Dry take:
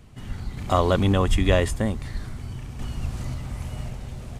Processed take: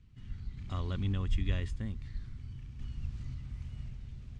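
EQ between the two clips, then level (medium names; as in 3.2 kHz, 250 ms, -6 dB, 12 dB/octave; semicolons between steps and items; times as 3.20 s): distance through air 130 m; amplifier tone stack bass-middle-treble 6-0-2; +3.5 dB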